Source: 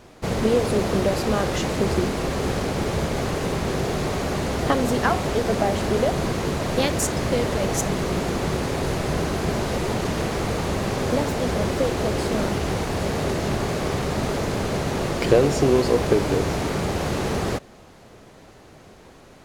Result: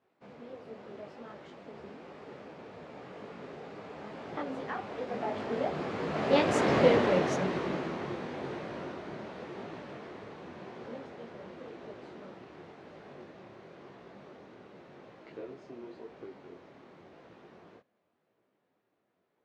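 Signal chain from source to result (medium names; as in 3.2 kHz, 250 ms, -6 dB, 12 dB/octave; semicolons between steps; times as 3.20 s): Doppler pass-by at 6.80 s, 24 m/s, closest 7.8 m; band-pass 200–2900 Hz; detune thickener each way 32 cents; trim +5.5 dB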